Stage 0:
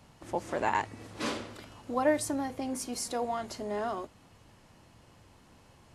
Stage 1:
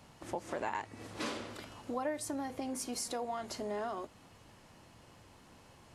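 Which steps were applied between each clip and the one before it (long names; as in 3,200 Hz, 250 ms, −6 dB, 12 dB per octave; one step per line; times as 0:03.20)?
low-shelf EQ 160 Hz −4.5 dB
downward compressor 3 to 1, threshold −37 dBFS, peak gain reduction 12 dB
level +1 dB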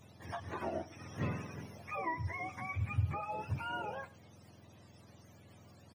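frequency axis turned over on the octave scale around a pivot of 770 Hz
single-tap delay 105 ms −20.5 dB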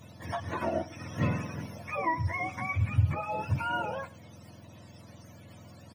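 notch comb filter 400 Hz
level +8.5 dB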